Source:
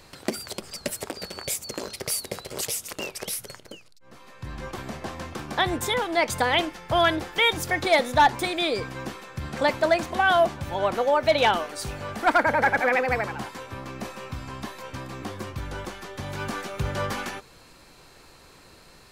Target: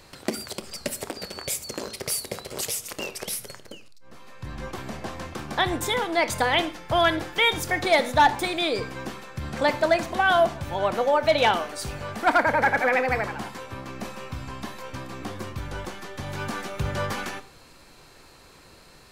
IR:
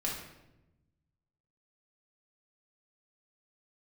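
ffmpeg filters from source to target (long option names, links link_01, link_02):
-filter_complex "[0:a]asplit=2[link_01][link_02];[1:a]atrim=start_sample=2205,afade=type=out:start_time=0.17:duration=0.01,atrim=end_sample=7938,adelay=27[link_03];[link_02][link_03]afir=irnorm=-1:irlink=0,volume=-17dB[link_04];[link_01][link_04]amix=inputs=2:normalize=0"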